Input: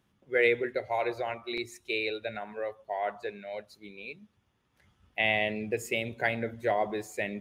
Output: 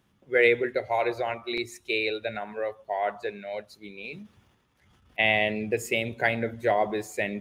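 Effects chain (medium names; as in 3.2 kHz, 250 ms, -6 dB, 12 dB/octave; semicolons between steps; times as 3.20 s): 4.04–5.19 s: transient shaper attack -9 dB, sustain +8 dB; trim +4 dB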